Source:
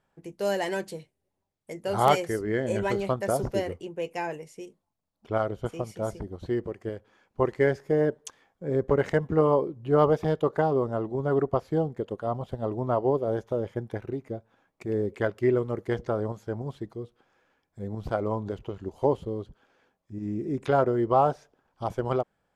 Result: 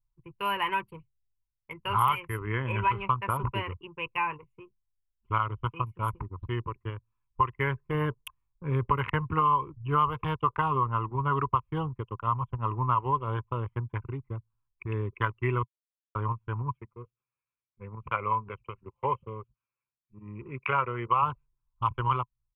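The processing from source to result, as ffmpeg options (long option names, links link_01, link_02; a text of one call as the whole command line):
ffmpeg -i in.wav -filter_complex "[0:a]asettb=1/sr,asplit=3[link_01][link_02][link_03];[link_01]atrim=end=2.464[link_04];[link_02]atrim=start=2.46:end=3.64,asetpts=PTS-STARTPTS,afade=type=in:duration=0.004:curve=qsin,afade=type=out:start_time=1.176:duration=0.004:curve=qsin,aemphasis=mode=reproduction:type=cd[link_05];[link_03]atrim=start=3.636[link_06];[link_04][link_05]acrossfade=duration=0.004:curve1=hsin:curve2=qsin[link_07];[link_07][link_06]acrossfade=duration=0.004:curve1=qsin:curve2=hsin,asettb=1/sr,asplit=3[link_08][link_09][link_10];[link_08]atrim=end=7.944[link_11];[link_09]atrim=start=7.94:end=9.29,asetpts=PTS-STARTPTS,afade=type=in:duration=0.004:curve=qsin,afade=type=out:start_time=1.346:duration=0.004:curve=qsin,lowshelf=frequency=310:gain=4[link_12];[link_10]atrim=start=9.286[link_13];[link_11][link_12]acrossfade=duration=0.004:curve1=hsin:curve2=qsin[link_14];[link_14][link_13]acrossfade=duration=0.004:curve1=qsin:curve2=hsin,asplit=3[link_15][link_16][link_17];[link_15]afade=type=out:start_time=16.73:duration=0.02[link_18];[link_16]highpass=210,equalizer=frequency=300:width_type=q:width=4:gain=-10,equalizer=frequency=520:width_type=q:width=4:gain=6,equalizer=frequency=950:width_type=q:width=4:gain=-6,equalizer=frequency=2300:width_type=q:width=4:gain=10,lowpass=frequency=3000:width=0.5412,lowpass=frequency=3000:width=1.3066,afade=type=in:start_time=16.73:duration=0.02,afade=type=out:start_time=21.21:duration=0.02[link_19];[link_17]afade=type=in:start_time=21.21:duration=0.02[link_20];[link_18][link_19][link_20]amix=inputs=3:normalize=0,asplit=3[link_21][link_22][link_23];[link_21]atrim=end=15.63,asetpts=PTS-STARTPTS,afade=type=out:start_time=15.626:duration=0.004:curve=hsin[link_24];[link_22]atrim=start=15.63:end=16.15,asetpts=PTS-STARTPTS,volume=0[link_25];[link_23]atrim=start=16.15,asetpts=PTS-STARTPTS,afade=type=in:duration=0.004:curve=hsin[link_26];[link_24][link_25][link_26]concat=n=3:v=0:a=1,anlmdn=1.58,firequalizer=gain_entry='entry(120,0);entry(180,-16);entry(430,-18);entry(690,-26);entry(1000,9);entry(1700,-9);entry(2600,10);entry(4200,-20);entry(6400,-30);entry(11000,7)':delay=0.05:min_phase=1,acrossover=split=120|2300[link_27][link_28][link_29];[link_27]acompressor=threshold=-51dB:ratio=4[link_30];[link_28]acompressor=threshold=-32dB:ratio=4[link_31];[link_29]acompressor=threshold=-53dB:ratio=4[link_32];[link_30][link_31][link_32]amix=inputs=3:normalize=0,volume=9dB" out.wav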